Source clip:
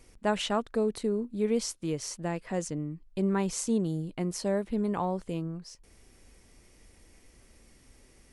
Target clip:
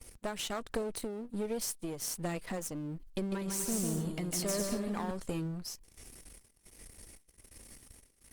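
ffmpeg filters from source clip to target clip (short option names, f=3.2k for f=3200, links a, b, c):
-filter_complex "[0:a]aeval=exprs='if(lt(val(0),0),0.251*val(0),val(0))':c=same,highshelf=f=4k:g=6,asoftclip=type=tanh:threshold=-15.5dB,acompressor=threshold=-36dB:ratio=10,asettb=1/sr,asplit=3[a][b][c];[a]atrim=end=3.064[d];[b]atrim=start=3.06:end=5.11,asetpts=PTS-STARTPTS,afade=t=in:d=0.004:c=qsin,afade=t=out:st=2.046:d=0.004:c=qsin,aecho=1:1:150|247.5|310.9|352.1|378.8:0.631|0.398|0.251|0.158|0.1,atrim=end_sample=90405[e];[c]atrim=start=5.106[f];[d][e]acrossfade=d=0.004:c1=hsin:c2=qsin[g];[g][f]acrossfade=d=0.004:c1=qsin:c2=hsin,acontrast=57,tremolo=f=1.3:d=0.36,highshelf=f=8k:g=5.5,agate=range=-14dB:threshold=-52dB:ratio=16:detection=peak" -ar 48000 -c:a libopus -b:a 32k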